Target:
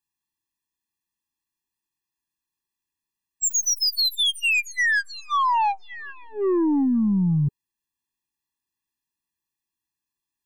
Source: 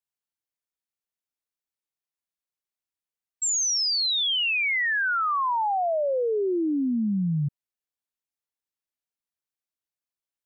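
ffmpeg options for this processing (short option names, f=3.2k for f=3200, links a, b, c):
-af "aeval=exprs='(tanh(20*val(0)+0.1)-tanh(0.1))/20':c=same,afftfilt=real='re*eq(mod(floor(b*sr/1024/400),2),0)':imag='im*eq(mod(floor(b*sr/1024/400),2),0)':win_size=1024:overlap=0.75,volume=8.5dB"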